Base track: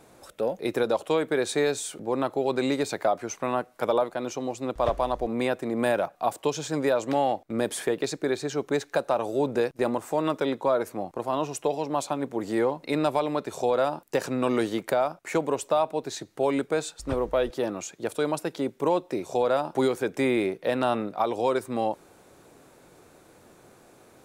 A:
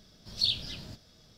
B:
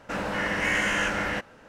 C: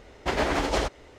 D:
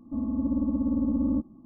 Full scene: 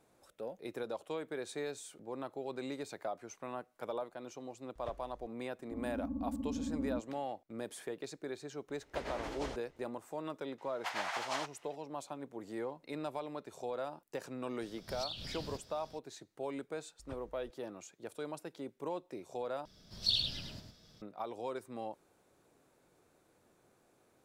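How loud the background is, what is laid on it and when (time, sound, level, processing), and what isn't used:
base track -15.5 dB
5.59 s: add D -12.5 dB
8.68 s: add C -17 dB
10.58 s: add C -9 dB + steep high-pass 710 Hz
14.62 s: add A -0.5 dB + compression, threshold -39 dBFS
19.65 s: replace with A -4 dB + delay 106 ms -5.5 dB
not used: B

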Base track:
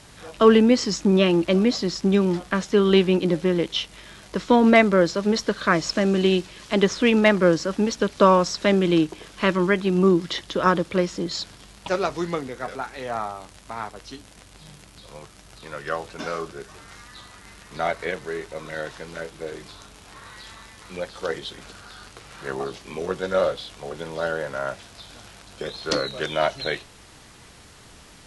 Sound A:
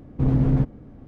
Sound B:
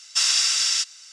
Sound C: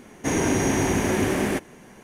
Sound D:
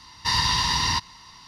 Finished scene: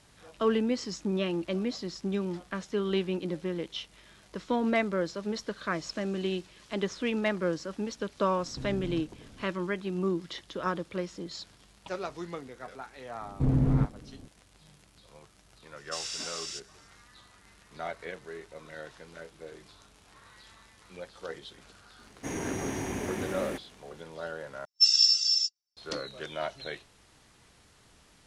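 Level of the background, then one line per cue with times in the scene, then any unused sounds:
base track -12 dB
8.38 s: add A -8 dB + compression, threshold -28 dBFS
13.21 s: add A -5 dB
15.76 s: add B -17 dB
21.99 s: add C -12 dB
24.65 s: replace with B -3.5 dB + spectral contrast expander 2.5:1
not used: D

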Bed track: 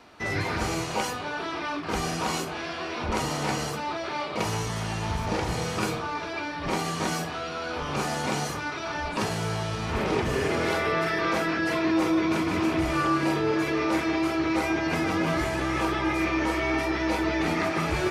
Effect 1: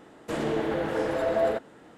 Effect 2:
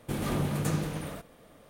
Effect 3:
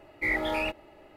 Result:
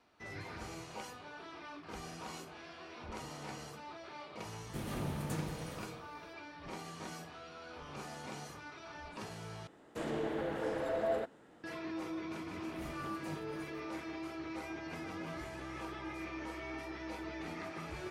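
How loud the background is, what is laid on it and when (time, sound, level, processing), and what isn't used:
bed track -17.5 dB
4.65 s: add 2 -9.5 dB
9.67 s: replace with 1 -9 dB
12.59 s: add 2 -16.5 dB + tremolo of two beating tones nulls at 4 Hz
not used: 3

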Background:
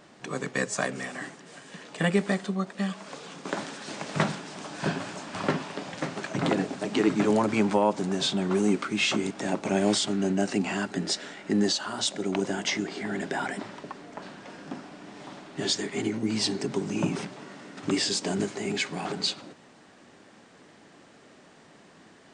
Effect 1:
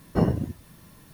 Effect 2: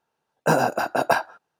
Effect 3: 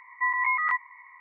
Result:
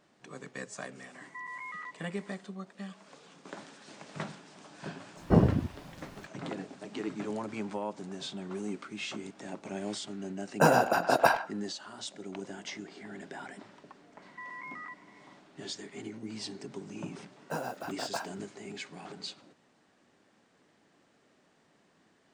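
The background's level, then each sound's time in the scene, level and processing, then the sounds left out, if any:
background -13 dB
1.14 s: add 3 -10 dB + peak limiter -25.5 dBFS
5.15 s: add 1, fades 0.05 s + treble shelf 3.8 kHz -12 dB
10.14 s: add 2 -3 dB + speakerphone echo 100 ms, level -11 dB
14.17 s: add 3 -10.5 dB + compression, threshold -30 dBFS
17.04 s: add 2 -16.5 dB + block-companded coder 5-bit

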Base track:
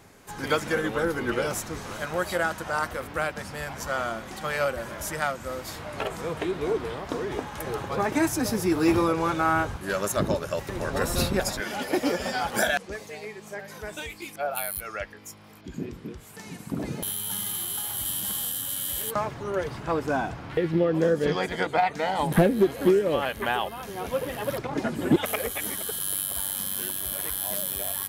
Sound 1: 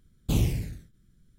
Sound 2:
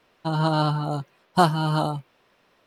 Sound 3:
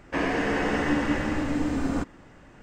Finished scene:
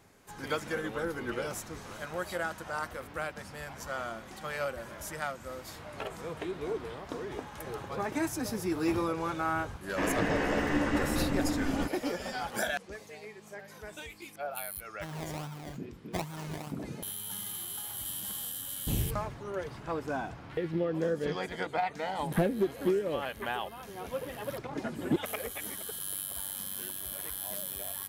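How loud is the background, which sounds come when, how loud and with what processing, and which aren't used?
base track -8 dB
9.84 s: add 3 -4.5 dB
14.76 s: add 2 -17 dB + decimation with a swept rate 26×, swing 60% 2.4 Hz
18.58 s: add 1 -7.5 dB + low-pass 12 kHz

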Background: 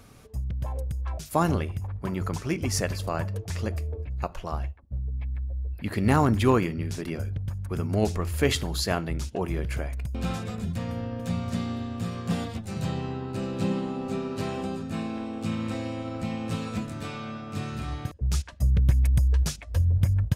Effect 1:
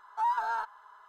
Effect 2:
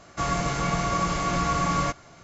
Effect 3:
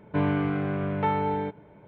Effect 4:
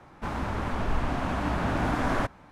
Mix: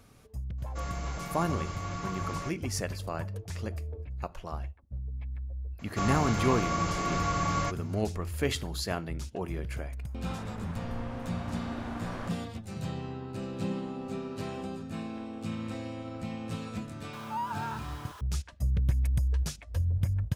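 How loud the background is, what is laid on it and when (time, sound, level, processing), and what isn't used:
background -6 dB
0.58 s: add 2 -13 dB
5.79 s: add 2 -5 dB
10.03 s: add 4 -13 dB
17.13 s: add 1 -7 dB + jump at every zero crossing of -37 dBFS
not used: 3

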